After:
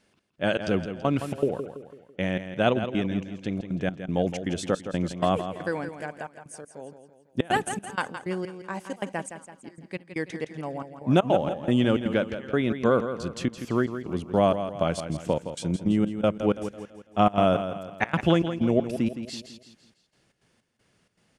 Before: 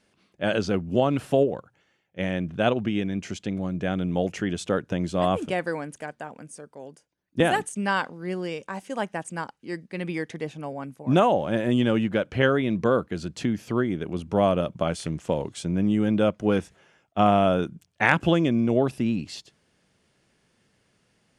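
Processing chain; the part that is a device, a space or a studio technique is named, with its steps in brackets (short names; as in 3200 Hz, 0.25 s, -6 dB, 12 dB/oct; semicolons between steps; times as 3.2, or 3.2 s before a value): trance gate with a delay (step gate "xx..xx.xx..xxx.x" 158 bpm -24 dB; feedback echo 0.166 s, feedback 45%, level -10 dB)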